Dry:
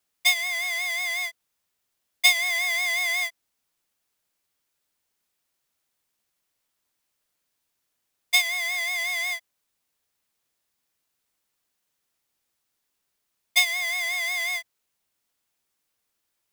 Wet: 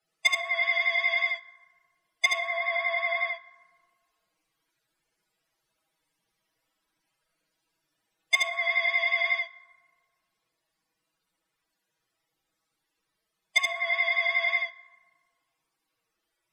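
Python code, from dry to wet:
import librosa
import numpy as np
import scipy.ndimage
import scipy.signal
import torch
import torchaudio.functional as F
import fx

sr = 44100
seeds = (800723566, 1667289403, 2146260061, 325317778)

p1 = fx.env_lowpass_down(x, sr, base_hz=1100.0, full_db=-21.0)
p2 = fx.high_shelf(p1, sr, hz=4200.0, db=-3.5)
p3 = fx.spec_topn(p2, sr, count=64)
p4 = fx.peak_eq(p3, sr, hz=6700.0, db=-2.5, octaves=0.23)
p5 = fx.rider(p4, sr, range_db=10, speed_s=0.5)
p6 = p4 + (p5 * 10.0 ** (-3.0 / 20.0))
p7 = p6 + 0.91 * np.pad(p6, (int(6.2 * sr / 1000.0), 0))[:len(p6)]
p8 = np.clip(p7, -10.0 ** (-11.5 / 20.0), 10.0 ** (-11.5 / 20.0))
p9 = p8 + fx.echo_single(p8, sr, ms=75, db=-3.0, dry=0)
p10 = fx.rev_fdn(p9, sr, rt60_s=1.7, lf_ratio=1.1, hf_ratio=0.4, size_ms=27.0, drr_db=14.5)
y = p10 * 10.0 ** (-1.0 / 20.0)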